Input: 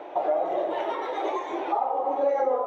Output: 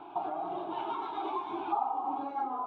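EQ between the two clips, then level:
spectral tilt −2 dB per octave
parametric band 590 Hz −10 dB 0.21 octaves
phaser with its sweep stopped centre 1,900 Hz, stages 6
−2.0 dB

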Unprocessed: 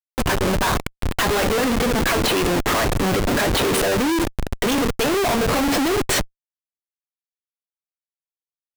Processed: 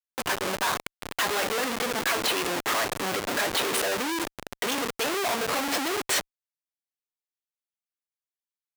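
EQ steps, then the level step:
high-pass filter 710 Hz 6 dB per octave
−4.0 dB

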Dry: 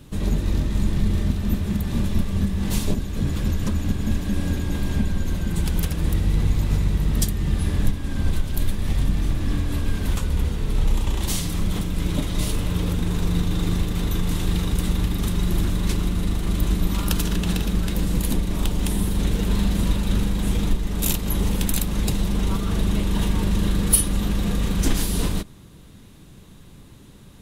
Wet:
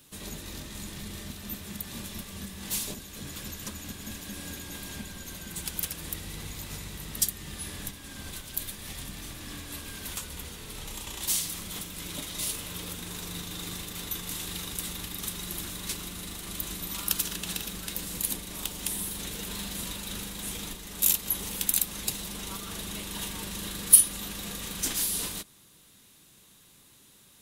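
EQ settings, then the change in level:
spectral tilt +3.5 dB per octave
−9.0 dB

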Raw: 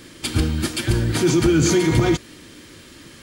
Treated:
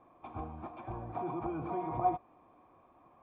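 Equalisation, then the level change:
formant resonators in series a
+3.5 dB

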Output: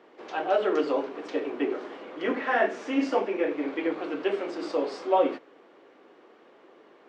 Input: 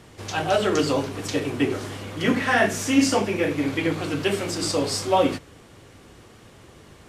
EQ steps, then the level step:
high-pass filter 320 Hz 24 dB per octave
head-to-tape spacing loss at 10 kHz 37 dB
0.0 dB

